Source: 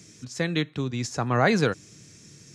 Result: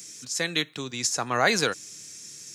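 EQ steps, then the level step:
RIAA equalisation recording
0.0 dB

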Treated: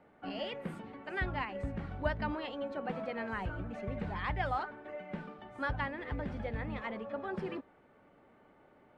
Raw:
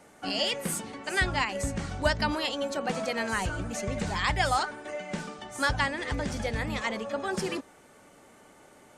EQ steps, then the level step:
high-frequency loss of the air 490 metres
−5.5 dB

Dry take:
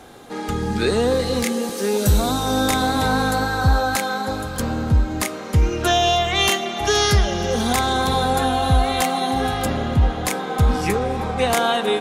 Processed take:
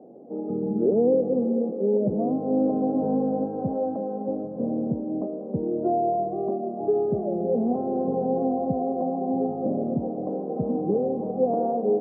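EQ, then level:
high-pass filter 180 Hz 24 dB per octave
elliptic low-pass filter 640 Hz, stop band 80 dB
0.0 dB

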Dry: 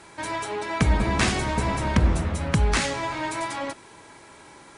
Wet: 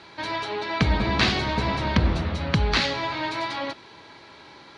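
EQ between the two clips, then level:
high-pass filter 56 Hz
high shelf with overshoot 6,200 Hz −13.5 dB, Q 3
notch filter 5,100 Hz, Q 20
0.0 dB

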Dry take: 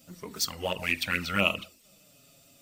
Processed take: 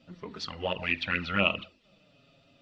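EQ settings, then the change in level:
low-pass filter 3,800 Hz 24 dB per octave
notch filter 2,200 Hz, Q 17
0.0 dB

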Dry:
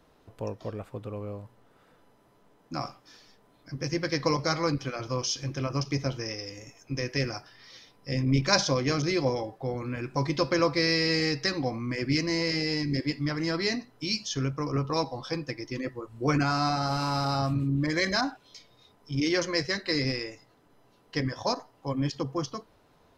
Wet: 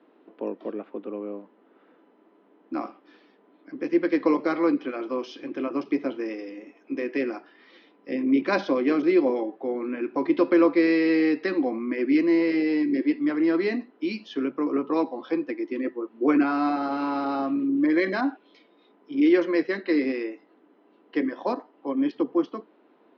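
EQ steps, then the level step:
Butterworth high-pass 200 Hz 48 dB per octave
low-pass filter 3,100 Hz 24 dB per octave
parametric band 330 Hz +10.5 dB 0.74 octaves
0.0 dB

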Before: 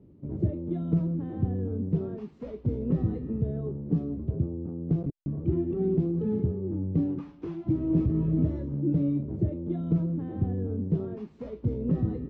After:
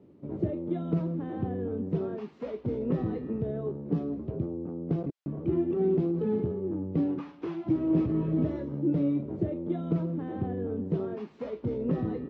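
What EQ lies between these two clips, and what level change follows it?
high-pass filter 650 Hz 6 dB per octave
high-frequency loss of the air 86 metres
+8.5 dB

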